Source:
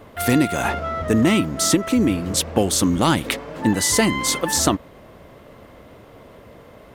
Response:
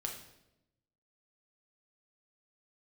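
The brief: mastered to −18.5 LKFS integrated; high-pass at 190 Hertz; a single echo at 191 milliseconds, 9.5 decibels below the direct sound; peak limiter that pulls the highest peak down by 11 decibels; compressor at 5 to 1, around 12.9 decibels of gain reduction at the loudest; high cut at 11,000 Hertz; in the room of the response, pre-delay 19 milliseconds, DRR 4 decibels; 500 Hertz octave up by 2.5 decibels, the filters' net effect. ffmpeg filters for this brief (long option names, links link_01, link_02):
-filter_complex "[0:a]highpass=190,lowpass=11000,equalizer=frequency=500:width_type=o:gain=3.5,acompressor=threshold=-27dB:ratio=5,alimiter=limit=-22dB:level=0:latency=1,aecho=1:1:191:0.335,asplit=2[link_01][link_02];[1:a]atrim=start_sample=2205,adelay=19[link_03];[link_02][link_03]afir=irnorm=-1:irlink=0,volume=-4dB[link_04];[link_01][link_04]amix=inputs=2:normalize=0,volume=11.5dB"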